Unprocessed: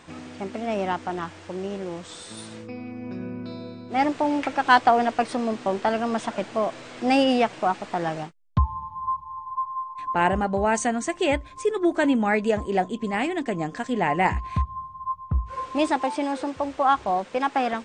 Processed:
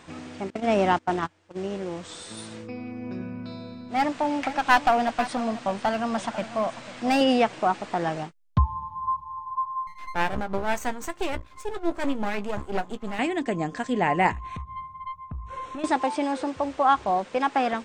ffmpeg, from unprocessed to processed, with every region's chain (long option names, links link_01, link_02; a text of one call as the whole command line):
ffmpeg -i in.wav -filter_complex "[0:a]asettb=1/sr,asplit=3[link_01][link_02][link_03];[link_01]atrim=end=0.504[link_04];[link_02]atrim=start=0.5:end=1.57,asetpts=PTS-STARTPTS,afade=type=in:duration=0.004:curve=qsin,afade=type=out:start_time=1.066:duration=0.004:curve=qsin,agate=range=-25dB:threshold=-31dB:ratio=16:release=100:detection=peak,acontrast=23[link_05];[link_03]atrim=start=1.566[link_06];[link_04][link_05]acrossfade=duration=0.004:curve1=hsin:curve2=qsin[link_07];[link_07][link_06]acrossfade=duration=0.004:curve1=qsin:curve2=hsin,asettb=1/sr,asplit=3[link_08][link_09][link_10];[link_08]atrim=end=3.224[link_11];[link_09]atrim=start=3.22:end=7.21,asetpts=PTS-STARTPTS,afade=type=in:duration=0.004:curve=qsin,afade=type=out:start_time=3.986:duration=0.004:curve=qsin,equalizer=frequency=390:width_type=o:width=0.52:gain=-11.5,aeval=exprs='clip(val(0),-1,0.119)':channel_layout=same,aecho=1:1:495:0.188,atrim=end_sample=175959[link_12];[link_10]atrim=start=7.206[link_13];[link_11][link_12]acrossfade=duration=0.004:curve1=hsin:curve2=qsin[link_14];[link_14][link_13]acrossfade=duration=0.004:curve1=qsin:curve2=hsin,asettb=1/sr,asplit=3[link_15][link_16][link_17];[link_15]atrim=end=9.874[link_18];[link_16]atrim=start=9.87:end=13.19,asetpts=PTS-STARTPTS,afade=type=in:duration=0.004:curve=qsin,afade=type=out:start_time=3.316:duration=0.004:curve=qsin,aeval=exprs='max(val(0),0)':channel_layout=same,tremolo=f=5.9:d=0.52,asplit=2[link_19][link_20];[link_20]adelay=15,volume=-12dB[link_21];[link_19][link_21]amix=inputs=2:normalize=0,atrim=end_sample=146412[link_22];[link_17]atrim=start=13.186[link_23];[link_18][link_22]acrossfade=duration=0.004:curve1=hsin:curve2=qsin[link_24];[link_24][link_23]acrossfade=duration=0.004:curve1=qsin:curve2=hsin,asettb=1/sr,asplit=3[link_25][link_26][link_27];[link_25]atrim=end=14.314[link_28];[link_26]atrim=start=14.31:end=15.84,asetpts=PTS-STARTPTS,afade=type=in:duration=0.004:curve=qsin,afade=type=out:start_time=1.526:duration=0.004:curve=qsin,acompressor=threshold=-28dB:ratio=10:attack=3.2:release=140:knee=1:detection=peak,aeval=exprs='(tanh(22.4*val(0)+0.35)-tanh(0.35))/22.4':channel_layout=same,asuperstop=centerf=4800:order=4:qfactor=4.5[link_29];[link_27]atrim=start=15.836[link_30];[link_28][link_29]acrossfade=duration=0.004:curve1=hsin:curve2=qsin[link_31];[link_31][link_30]acrossfade=duration=0.004:curve1=qsin:curve2=hsin" out.wav